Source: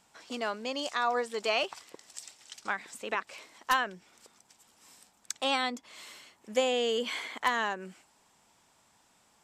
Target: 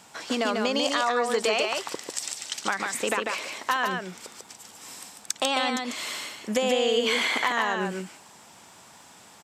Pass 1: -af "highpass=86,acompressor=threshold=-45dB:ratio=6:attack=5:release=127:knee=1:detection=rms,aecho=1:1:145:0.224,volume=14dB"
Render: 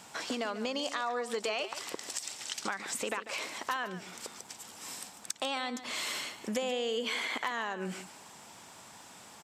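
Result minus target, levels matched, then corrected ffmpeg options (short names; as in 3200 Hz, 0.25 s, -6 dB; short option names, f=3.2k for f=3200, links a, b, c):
compressor: peak gain reduction +8.5 dB; echo-to-direct -9 dB
-af "highpass=86,acompressor=threshold=-35dB:ratio=6:attack=5:release=127:knee=1:detection=rms,aecho=1:1:145:0.631,volume=14dB"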